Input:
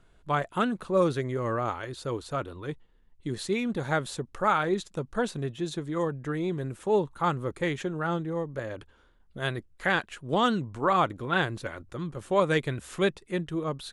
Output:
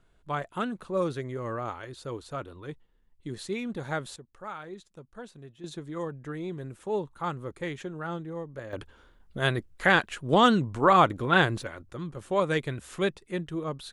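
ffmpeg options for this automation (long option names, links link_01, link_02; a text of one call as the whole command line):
ffmpeg -i in.wav -af "asetnsamples=nb_out_samples=441:pad=0,asendcmd='4.16 volume volume -15dB;5.64 volume volume -5.5dB;8.73 volume volume 4.5dB;11.63 volume volume -2dB',volume=-4.5dB" out.wav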